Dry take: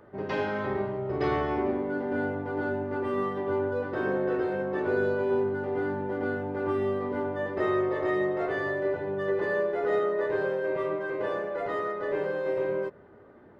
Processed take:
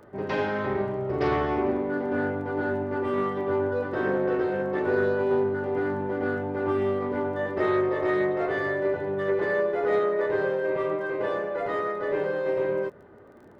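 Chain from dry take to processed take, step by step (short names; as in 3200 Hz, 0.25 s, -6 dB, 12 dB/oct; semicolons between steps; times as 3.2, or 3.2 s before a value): crackle 17/s -50 dBFS; Doppler distortion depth 0.11 ms; gain +2.5 dB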